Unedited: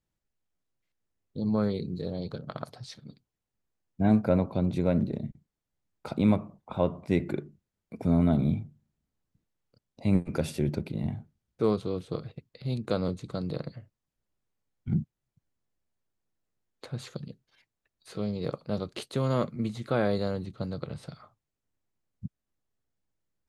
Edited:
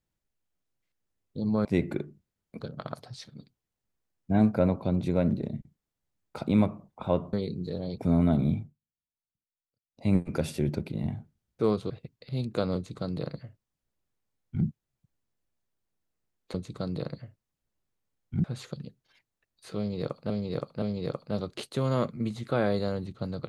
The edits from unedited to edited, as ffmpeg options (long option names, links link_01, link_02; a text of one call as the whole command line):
ffmpeg -i in.wav -filter_complex "[0:a]asplit=12[link_01][link_02][link_03][link_04][link_05][link_06][link_07][link_08][link_09][link_10][link_11][link_12];[link_01]atrim=end=1.652[link_13];[link_02]atrim=start=7.028:end=7.982[link_14];[link_03]atrim=start=2.298:end=7.032[link_15];[link_04]atrim=start=1.648:end=2.302[link_16];[link_05]atrim=start=7.978:end=8.76,asetpts=PTS-STARTPTS,afade=type=out:start_time=0.632:duration=0.15:silence=0.0749894[link_17];[link_06]atrim=start=8.76:end=9.91,asetpts=PTS-STARTPTS,volume=-22.5dB[link_18];[link_07]atrim=start=9.91:end=11.902,asetpts=PTS-STARTPTS,afade=type=in:duration=0.15:silence=0.0749894[link_19];[link_08]atrim=start=12.228:end=16.872[link_20];[link_09]atrim=start=13.078:end=14.982[link_21];[link_10]atrim=start=16.868:end=18.732[link_22];[link_11]atrim=start=18.208:end=18.732[link_23];[link_12]atrim=start=18.208[link_24];[link_13][link_14]acrossfade=duration=0.004:curve1=hsin:curve2=hsin[link_25];[link_25][link_15]acrossfade=duration=0.004:curve1=hsin:curve2=hsin[link_26];[link_26][link_16]acrossfade=duration=0.004:curve1=hsin:curve2=hsin[link_27];[link_17][link_18][link_19]concat=n=3:v=0:a=1[link_28];[link_27][link_28]acrossfade=duration=0.004:curve1=hsin:curve2=hsin[link_29];[link_29][link_20]acrossfade=duration=0.004:curve1=hsin:curve2=hsin[link_30];[link_30][link_21]acrossfade=duration=0.004:curve1=hsin:curve2=hsin[link_31];[link_31][link_22]acrossfade=duration=0.004:curve1=hsin:curve2=hsin[link_32];[link_32][link_23]acrossfade=duration=0.004:curve1=hsin:curve2=hsin[link_33];[link_33][link_24]acrossfade=duration=0.004:curve1=hsin:curve2=hsin" out.wav